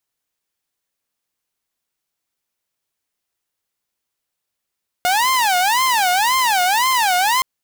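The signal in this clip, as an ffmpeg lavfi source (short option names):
-f lavfi -i "aevalsrc='0.266*(2*mod((883*t-167/(2*PI*1.9)*sin(2*PI*1.9*t)),1)-1)':d=2.37:s=44100"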